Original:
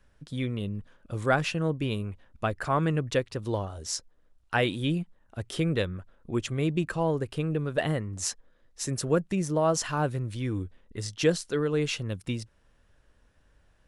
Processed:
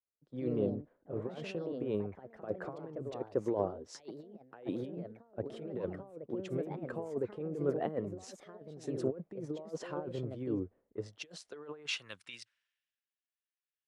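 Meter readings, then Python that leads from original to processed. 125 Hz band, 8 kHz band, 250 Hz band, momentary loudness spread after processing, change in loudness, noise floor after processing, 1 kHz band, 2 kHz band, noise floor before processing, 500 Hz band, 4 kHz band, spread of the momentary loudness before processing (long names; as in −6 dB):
−14.5 dB, −19.0 dB, −8.5 dB, 14 LU, −9.5 dB, below −85 dBFS, −14.0 dB, −15.0 dB, −64 dBFS, −7.0 dB, −11.5 dB, 11 LU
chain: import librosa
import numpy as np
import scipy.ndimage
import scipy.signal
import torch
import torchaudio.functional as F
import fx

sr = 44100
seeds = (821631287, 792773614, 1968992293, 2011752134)

y = fx.over_compress(x, sr, threshold_db=-30.0, ratio=-0.5)
y = fx.echo_pitch(y, sr, ms=140, semitones=3, count=2, db_per_echo=-6.0)
y = fx.filter_sweep_bandpass(y, sr, from_hz=450.0, to_hz=2200.0, start_s=10.95, end_s=12.82, q=1.5)
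y = fx.band_widen(y, sr, depth_pct=100)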